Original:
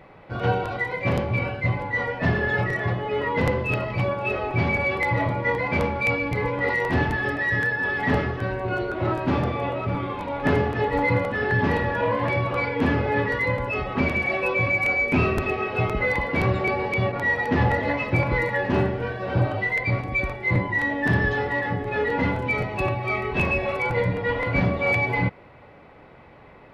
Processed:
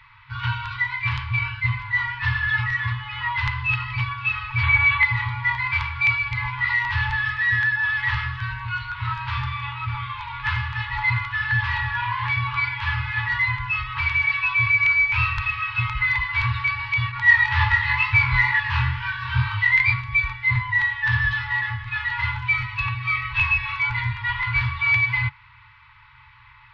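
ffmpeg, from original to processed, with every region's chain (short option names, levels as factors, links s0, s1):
-filter_complex "[0:a]asettb=1/sr,asplit=3[s0][s1][s2];[s0]atrim=end=4.634[s3];[s1]atrim=start=4.63:end=5.05,asetpts=PTS-STARTPTS,afade=t=in:d=0.004:c=qsin,afade=t=out:st=0.416:d=0.004:c=qsin,aemphasis=mode=reproduction:type=50kf,acontrast=45,asuperstop=centerf=5200:order=4:qfactor=3.1[s4];[s2]atrim=start=5.046[s5];[s3][s4]acrossfade=d=0.004:c1=hsin:c2=qsin[s6];[s6][s5]acrossfade=d=0.004:c1=qsin:c2=hsin,asettb=1/sr,asplit=3[s7][s8][s9];[s7]atrim=end=17.264[s10];[s8]atrim=start=17.26:end=19.94,asetpts=PTS-STARTPTS,afade=t=in:d=0.004:c=qsin,afade=t=out:st=2.676:d=0.004:c=qsin,asplit=2[s11][s12];[s12]adelay=13,volume=0.251[s13];[s11][s13]amix=inputs=2:normalize=0,atrim=end_sample=118188,flanger=delay=19.5:depth=4.6:speed=2.2,acontrast=67[s14];[s9]atrim=start=19.936[s15];[s10][s14]acrossfade=d=0.004:c1=hsin:c2=qsin[s16];[s16][s15]acrossfade=d=0.004:c1=qsin:c2=hsin,afftfilt=real='re*(1-between(b*sr/4096,130,860))':imag='im*(1-between(b*sr/4096,130,860))':win_size=4096:overlap=0.75,lowpass=f=4300:w=0.5412,lowpass=f=4300:w=1.3066,highshelf=f=2600:g=11"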